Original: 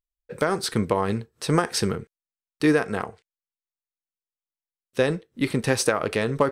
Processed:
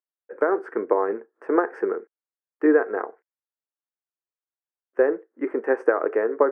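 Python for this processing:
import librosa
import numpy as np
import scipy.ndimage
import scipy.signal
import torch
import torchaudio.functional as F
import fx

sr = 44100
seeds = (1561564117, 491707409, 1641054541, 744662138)

y = scipy.signal.sosfilt(scipy.signal.ellip(3, 1.0, 40, [310.0, 1700.0], 'bandpass', fs=sr, output='sos'), x)
y = fx.dynamic_eq(y, sr, hz=420.0, q=2.0, threshold_db=-36.0, ratio=4.0, max_db=6)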